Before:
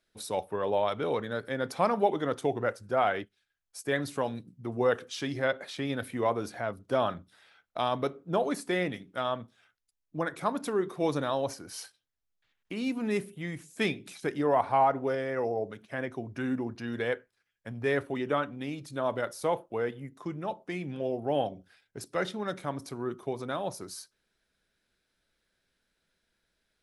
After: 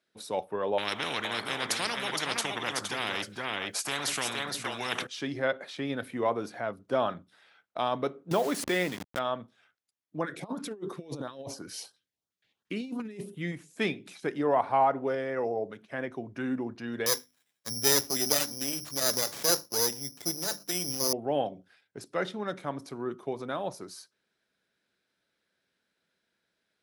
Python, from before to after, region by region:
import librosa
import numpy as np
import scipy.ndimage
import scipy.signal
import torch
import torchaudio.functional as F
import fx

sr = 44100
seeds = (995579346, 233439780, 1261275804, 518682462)

y = fx.chain(x, sr, fx.echo_single(ms=466, db=-10.0),
    fx.spectral_comp(ratio=10.0), at=(0.78, 5.07))
y = fx.chain(y, sr, fx.delta_hold(step_db=-40.5),
    fx.high_shelf(hz=3000.0, db=10.0),
    fx.pre_swell(db_per_s=44.0), at=(8.31, 9.19))
y = fx.chain(y, sr, fx.over_compress(threshold_db=-34.0, ratio=-0.5),
    fx.filter_lfo_notch(shape='saw_up', hz=2.9, low_hz=580.0, high_hz=2700.0, q=0.87), at=(10.24, 13.52))
y = fx.chain(y, sr, fx.lower_of_two(delay_ms=0.46),
    fx.hum_notches(base_hz=50, count=6),
    fx.resample_bad(factor=8, down='none', up='zero_stuff'), at=(17.06, 21.13))
y = scipy.signal.sosfilt(scipy.signal.butter(2, 140.0, 'highpass', fs=sr, output='sos'), y)
y = fx.high_shelf(y, sr, hz=7900.0, db=-8.5)